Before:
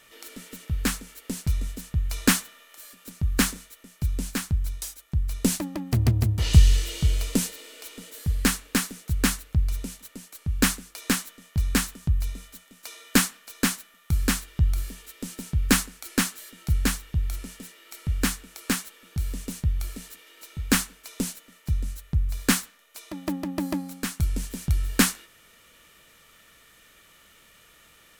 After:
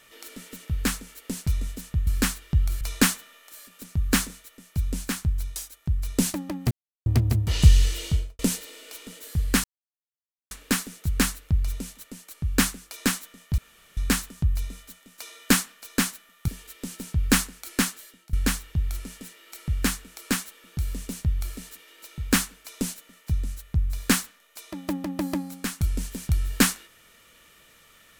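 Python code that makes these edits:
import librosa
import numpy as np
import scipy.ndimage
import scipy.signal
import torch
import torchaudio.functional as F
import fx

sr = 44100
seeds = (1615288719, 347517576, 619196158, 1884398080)

y = fx.studio_fade_out(x, sr, start_s=6.96, length_s=0.34)
y = fx.edit(y, sr, fx.insert_silence(at_s=5.97, length_s=0.35),
    fx.insert_silence(at_s=8.55, length_s=0.87),
    fx.insert_room_tone(at_s=11.62, length_s=0.39),
    fx.move(start_s=14.13, length_s=0.74, to_s=2.07),
    fx.fade_out_to(start_s=16.26, length_s=0.46, floor_db=-20.0), tone=tone)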